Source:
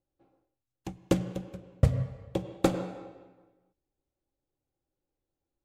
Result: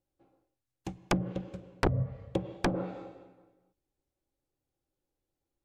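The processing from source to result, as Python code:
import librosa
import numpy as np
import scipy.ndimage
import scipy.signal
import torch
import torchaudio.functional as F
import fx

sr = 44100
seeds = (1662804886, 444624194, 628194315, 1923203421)

y = (np.mod(10.0 ** (16.0 / 20.0) * x + 1.0, 2.0) - 1.0) / 10.0 ** (16.0 / 20.0)
y = fx.env_lowpass_down(y, sr, base_hz=860.0, full_db=-24.0)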